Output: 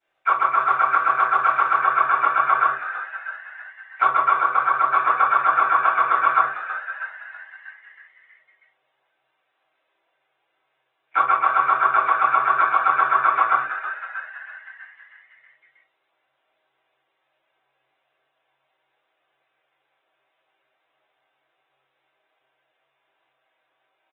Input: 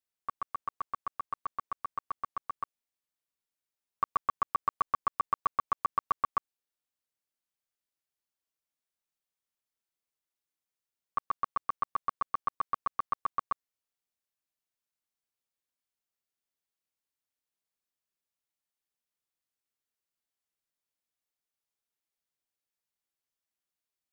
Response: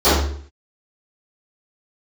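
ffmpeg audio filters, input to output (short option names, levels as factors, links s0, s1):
-filter_complex "[0:a]highpass=110,highshelf=f=2700:g=3,bandreject=f=50:t=h:w=6,bandreject=f=100:t=h:w=6,bandreject=f=150:t=h:w=6,bandreject=f=200:t=h:w=6,bandreject=f=250:t=h:w=6,bandreject=f=300:t=h:w=6,bandreject=f=350:t=h:w=6,bandreject=f=400:t=h:w=6,bandreject=f=450:t=h:w=6,acompressor=threshold=0.0141:ratio=10,aresample=16000,asoftclip=type=tanh:threshold=0.0316,aresample=44100,asplit=4[s0][s1][s2][s3];[s1]asetrate=52444,aresample=44100,atempo=0.840896,volume=1[s4];[s2]asetrate=55563,aresample=44100,atempo=0.793701,volume=0.447[s5];[s3]asetrate=88200,aresample=44100,atempo=0.5,volume=0.178[s6];[s0][s4][s5][s6]amix=inputs=4:normalize=0,acrossover=split=250[s7][s8];[s7]acrusher=bits=4:dc=4:mix=0:aa=0.000001[s9];[s8]asplit=8[s10][s11][s12][s13][s14][s15][s16][s17];[s11]adelay=321,afreqshift=110,volume=0.282[s18];[s12]adelay=642,afreqshift=220,volume=0.166[s19];[s13]adelay=963,afreqshift=330,volume=0.0977[s20];[s14]adelay=1284,afreqshift=440,volume=0.0582[s21];[s15]adelay=1605,afreqshift=550,volume=0.0343[s22];[s16]adelay=1926,afreqshift=660,volume=0.0202[s23];[s17]adelay=2247,afreqshift=770,volume=0.0119[s24];[s10][s18][s19][s20][s21][s22][s23][s24]amix=inputs=8:normalize=0[s25];[s9][s25]amix=inputs=2:normalize=0[s26];[1:a]atrim=start_sample=2205,asetrate=83790,aresample=44100[s27];[s26][s27]afir=irnorm=-1:irlink=0,aresample=8000,aresample=44100" -ar 48000 -c:a libopus -b:a 16k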